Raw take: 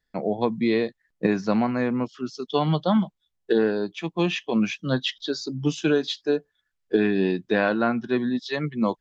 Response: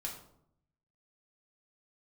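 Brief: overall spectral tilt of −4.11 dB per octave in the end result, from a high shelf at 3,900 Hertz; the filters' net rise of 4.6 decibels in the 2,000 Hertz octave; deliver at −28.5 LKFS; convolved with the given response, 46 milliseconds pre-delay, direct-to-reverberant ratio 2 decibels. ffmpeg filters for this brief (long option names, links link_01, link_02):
-filter_complex "[0:a]equalizer=frequency=2000:width_type=o:gain=5,highshelf=frequency=3900:gain=4.5,asplit=2[link_01][link_02];[1:a]atrim=start_sample=2205,adelay=46[link_03];[link_02][link_03]afir=irnorm=-1:irlink=0,volume=-1.5dB[link_04];[link_01][link_04]amix=inputs=2:normalize=0,volume=-6.5dB"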